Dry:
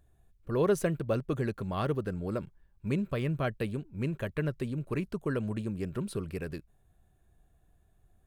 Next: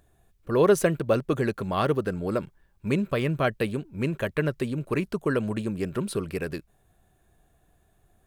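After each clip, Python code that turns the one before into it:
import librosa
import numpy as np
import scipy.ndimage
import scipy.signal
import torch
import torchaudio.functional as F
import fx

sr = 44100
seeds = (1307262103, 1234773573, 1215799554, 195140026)

y = fx.low_shelf(x, sr, hz=160.0, db=-9.5)
y = F.gain(torch.from_numpy(y), 8.5).numpy()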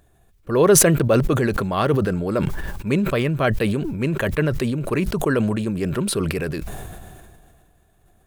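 y = fx.sustainer(x, sr, db_per_s=27.0)
y = F.gain(torch.from_numpy(y), 4.0).numpy()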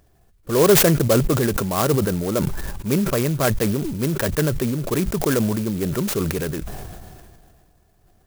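y = fx.clock_jitter(x, sr, seeds[0], jitter_ms=0.086)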